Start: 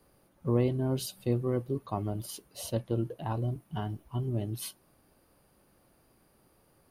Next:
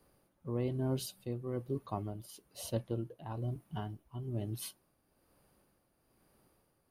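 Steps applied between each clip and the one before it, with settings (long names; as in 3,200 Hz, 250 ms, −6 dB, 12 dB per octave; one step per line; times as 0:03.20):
amplitude tremolo 1.1 Hz, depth 57%
level −3.5 dB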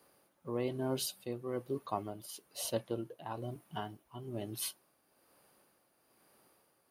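high-pass filter 520 Hz 6 dB per octave
level +5.5 dB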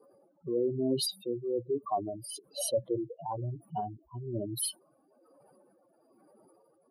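expanding power law on the bin magnitudes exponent 3.4
level +6.5 dB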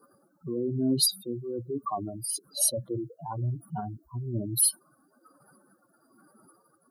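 drawn EQ curve 250 Hz 0 dB, 480 Hz −13 dB, 970 Hz −6 dB, 1,400 Hz +12 dB, 2,600 Hz −23 dB, 4,100 Hz 0 dB, 13,000 Hz +6 dB
level +6.5 dB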